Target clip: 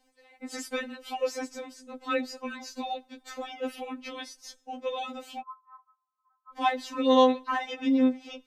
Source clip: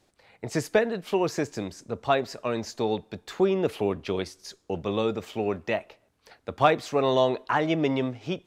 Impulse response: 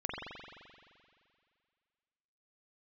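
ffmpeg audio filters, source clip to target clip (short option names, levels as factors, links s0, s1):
-filter_complex "[0:a]asplit=3[s0][s1][s2];[s0]afade=t=out:st=5.39:d=0.02[s3];[s1]asuperpass=centerf=1100:order=8:qfactor=2.8,afade=t=in:st=5.39:d=0.02,afade=t=out:st=6.52:d=0.02[s4];[s2]afade=t=in:st=6.52:d=0.02[s5];[s3][s4][s5]amix=inputs=3:normalize=0,afftfilt=real='re*3.46*eq(mod(b,12),0)':imag='im*3.46*eq(mod(b,12),0)':win_size=2048:overlap=0.75"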